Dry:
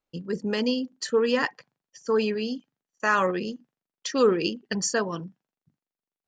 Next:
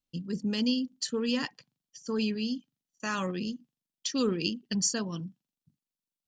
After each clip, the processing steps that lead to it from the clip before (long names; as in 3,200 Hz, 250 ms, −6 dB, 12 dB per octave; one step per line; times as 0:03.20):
flat-topped bell 890 Hz −11.5 dB 2.9 octaves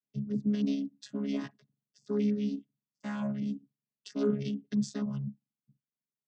channel vocoder with a chord as carrier bare fifth, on C#3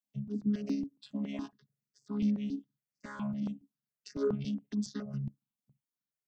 step-sequenced phaser 7.2 Hz 390–3,300 Hz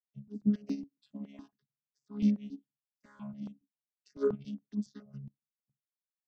expander for the loud parts 2.5 to 1, over −39 dBFS
level +4.5 dB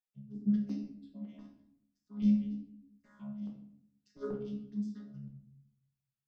rectangular room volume 140 cubic metres, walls mixed, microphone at 1 metre
level −7.5 dB